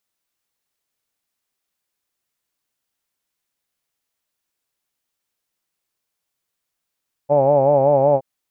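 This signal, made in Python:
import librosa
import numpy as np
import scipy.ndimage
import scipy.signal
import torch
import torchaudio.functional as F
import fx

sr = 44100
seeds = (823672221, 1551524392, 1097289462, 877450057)

y = fx.vowel(sr, seeds[0], length_s=0.92, word='hawed', hz=140.0, glide_st=0.0, vibrato_hz=5.3, vibrato_st=0.9)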